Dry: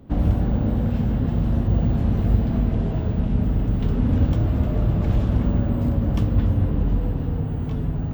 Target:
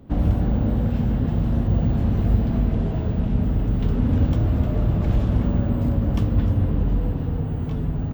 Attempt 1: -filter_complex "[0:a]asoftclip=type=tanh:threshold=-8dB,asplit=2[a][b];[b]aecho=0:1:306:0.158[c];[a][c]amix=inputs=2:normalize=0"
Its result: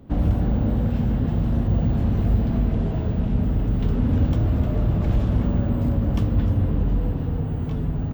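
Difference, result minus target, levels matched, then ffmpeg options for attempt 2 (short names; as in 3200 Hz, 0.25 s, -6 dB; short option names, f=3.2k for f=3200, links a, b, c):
soft clip: distortion +12 dB
-filter_complex "[0:a]asoftclip=type=tanh:threshold=-1dB,asplit=2[a][b];[b]aecho=0:1:306:0.158[c];[a][c]amix=inputs=2:normalize=0"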